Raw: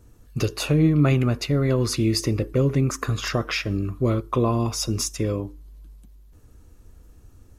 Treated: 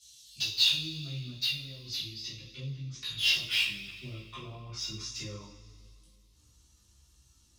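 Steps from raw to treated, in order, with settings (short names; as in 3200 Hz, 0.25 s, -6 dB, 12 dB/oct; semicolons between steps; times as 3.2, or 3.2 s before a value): treble ducked by the level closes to 690 Hz, closed at -18 dBFS; EQ curve 140 Hz 0 dB, 490 Hz -23 dB, 1500 Hz -24 dB, 3600 Hz +8 dB, 5900 Hz +12 dB; band-pass sweep 3500 Hz -> 1100 Hz, 2.9–5.55; in parallel at -12 dB: sine folder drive 4 dB, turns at -38.5 dBFS; on the sum: two-slope reverb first 0.41 s, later 2.3 s, from -18 dB, DRR -9 dB; chorus voices 2, 0.77 Hz, delay 17 ms, depth 2 ms; gain +4.5 dB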